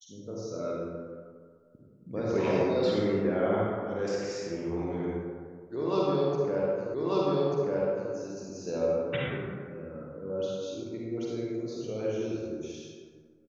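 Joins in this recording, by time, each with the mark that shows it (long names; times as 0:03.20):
0:06.94: the same again, the last 1.19 s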